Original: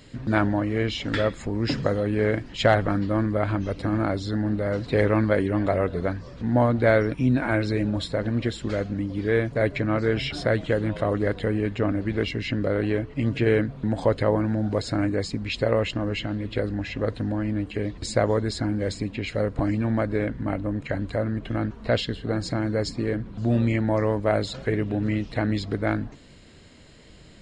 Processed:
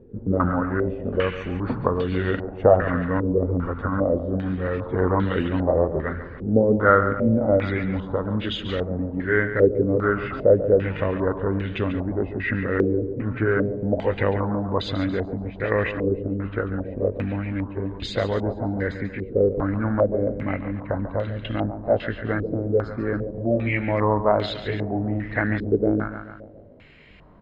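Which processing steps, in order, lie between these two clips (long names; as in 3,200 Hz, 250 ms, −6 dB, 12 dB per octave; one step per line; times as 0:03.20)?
pitch glide at a constant tempo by −2.5 semitones ending unshifted
repeating echo 141 ms, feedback 52%, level −11 dB
low-pass on a step sequencer 2.5 Hz 430–3,200 Hz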